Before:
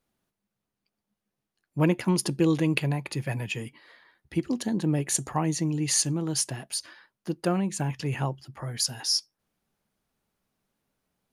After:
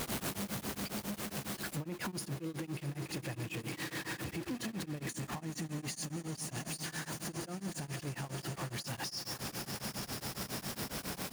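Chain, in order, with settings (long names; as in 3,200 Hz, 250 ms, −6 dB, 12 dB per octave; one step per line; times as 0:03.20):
converter with a step at zero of −24 dBFS
high-pass filter 120 Hz 6 dB per octave
low-shelf EQ 220 Hz +4.5 dB
echo that builds up and dies away 95 ms, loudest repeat 8, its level −18 dB
downward compressor, threshold −25 dBFS, peak gain reduction 10 dB
brickwall limiter −27.5 dBFS, peak gain reduction 12.5 dB
tremolo along a rectified sine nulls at 7.3 Hz
level −3 dB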